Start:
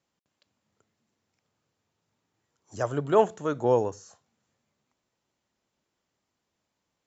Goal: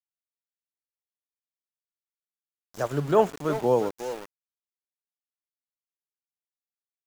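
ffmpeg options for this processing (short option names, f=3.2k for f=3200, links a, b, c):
-filter_complex "[0:a]lowshelf=f=120:t=q:w=3:g=-6,asplit=2[a][b];[b]adelay=360,highpass=300,lowpass=3.4k,asoftclip=type=hard:threshold=-15.5dB,volume=-10dB[c];[a][c]amix=inputs=2:normalize=0,aeval=exprs='val(0)*gte(abs(val(0)),0.015)':c=same"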